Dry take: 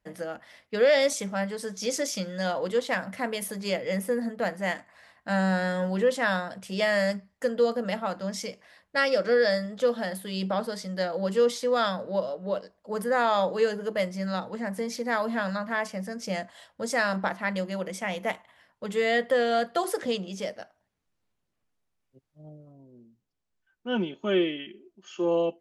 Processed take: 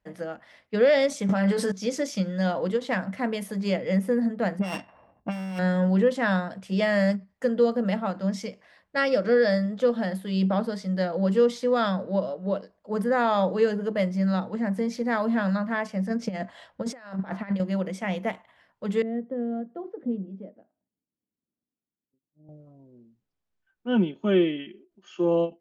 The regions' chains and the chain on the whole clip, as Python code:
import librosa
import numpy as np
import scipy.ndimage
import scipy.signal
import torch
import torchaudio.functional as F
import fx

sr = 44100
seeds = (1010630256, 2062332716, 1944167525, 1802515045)

y = fx.chain(x, sr, fx.low_shelf(hz=210.0, db=-10.0),
    fx.doubler(ms=21.0, db=-5.5),
    fx.env_flatten(amount_pct=100), at=(1.29, 1.72))
y = fx.chain(y, sr, fx.sample_sort(block=16),
    fx.env_lowpass(base_hz=390.0, full_db=-24.5),
    fx.over_compress(threshold_db=-34.0, ratio=-1.0), at=(4.59, 5.59))
y = fx.chain(y, sr, fx.over_compress(threshold_db=-33.0, ratio=-0.5),
    fx.high_shelf(hz=5500.0, db=-6.5), at=(16.1, 17.6))
y = fx.chain(y, sr, fx.bandpass_q(hz=260.0, q=2.2),
    fx.air_absorb(metres=210.0), at=(19.02, 22.49))
y = fx.lowpass(y, sr, hz=3500.0, slope=6)
y = fx.dynamic_eq(y, sr, hz=190.0, q=0.91, threshold_db=-43.0, ratio=4.0, max_db=8)
y = fx.end_taper(y, sr, db_per_s=300.0)